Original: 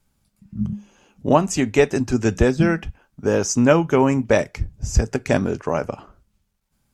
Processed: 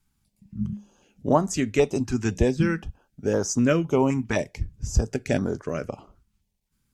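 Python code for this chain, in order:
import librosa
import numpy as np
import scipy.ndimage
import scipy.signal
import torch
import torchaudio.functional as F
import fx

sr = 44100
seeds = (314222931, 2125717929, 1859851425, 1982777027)

y = fx.filter_held_notch(x, sr, hz=3.9, low_hz=550.0, high_hz=2600.0)
y = F.gain(torch.from_numpy(y), -4.0).numpy()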